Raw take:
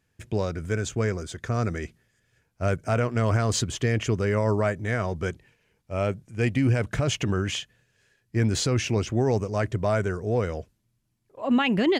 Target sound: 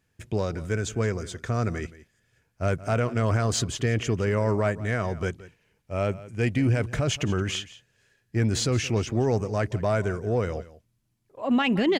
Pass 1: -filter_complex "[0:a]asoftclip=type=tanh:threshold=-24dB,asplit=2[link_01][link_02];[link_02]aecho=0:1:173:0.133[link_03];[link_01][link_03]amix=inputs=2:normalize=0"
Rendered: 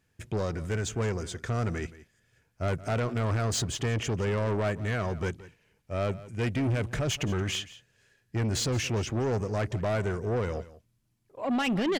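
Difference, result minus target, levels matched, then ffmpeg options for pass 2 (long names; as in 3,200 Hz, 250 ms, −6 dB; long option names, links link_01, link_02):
soft clipping: distortion +17 dB
-filter_complex "[0:a]asoftclip=type=tanh:threshold=-12dB,asplit=2[link_01][link_02];[link_02]aecho=0:1:173:0.133[link_03];[link_01][link_03]amix=inputs=2:normalize=0"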